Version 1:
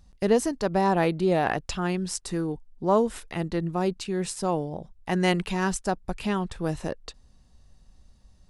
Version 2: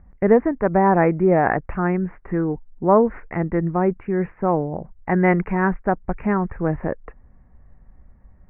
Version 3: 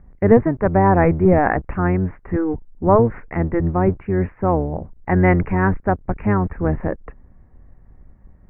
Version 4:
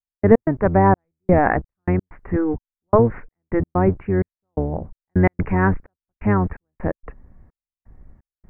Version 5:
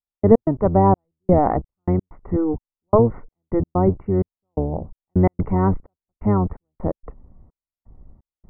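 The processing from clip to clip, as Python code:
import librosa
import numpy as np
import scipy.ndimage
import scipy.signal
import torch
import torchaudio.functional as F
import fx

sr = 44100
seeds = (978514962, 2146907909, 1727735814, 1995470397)

y1 = scipy.signal.sosfilt(scipy.signal.butter(12, 2200.0, 'lowpass', fs=sr, output='sos'), x)
y1 = y1 * 10.0 ** (6.5 / 20.0)
y2 = fx.octave_divider(y1, sr, octaves=1, level_db=-1.0)
y2 = y2 * 10.0 ** (1.0 / 20.0)
y3 = fx.step_gate(y2, sr, bpm=128, pattern='..x.xxxx...xxx', floor_db=-60.0, edge_ms=4.5)
y4 = scipy.signal.savgol_filter(y3, 65, 4, mode='constant')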